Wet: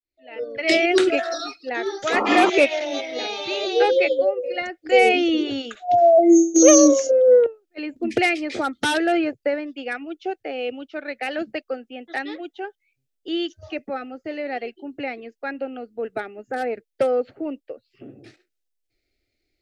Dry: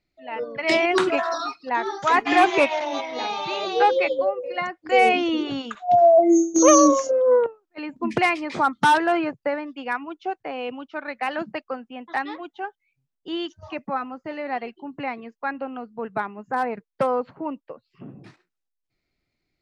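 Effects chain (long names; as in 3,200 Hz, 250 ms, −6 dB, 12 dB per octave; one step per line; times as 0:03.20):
fade in at the beginning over 0.63 s
phaser with its sweep stopped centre 420 Hz, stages 4
sound drawn into the spectrogram noise, 0:02.12–0:02.50, 200–1,400 Hz −28 dBFS
level +4.5 dB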